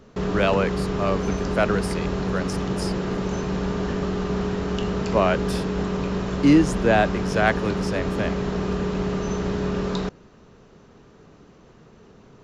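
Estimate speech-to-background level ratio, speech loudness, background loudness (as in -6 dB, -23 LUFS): 2.0 dB, -24.0 LUFS, -26.0 LUFS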